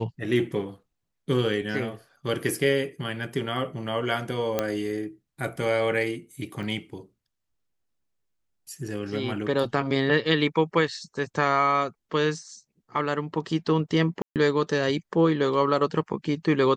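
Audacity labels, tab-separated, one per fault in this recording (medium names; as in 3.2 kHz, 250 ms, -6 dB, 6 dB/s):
4.590000	4.590000	pop -10 dBFS
6.630000	6.630000	dropout 4.6 ms
14.220000	14.360000	dropout 138 ms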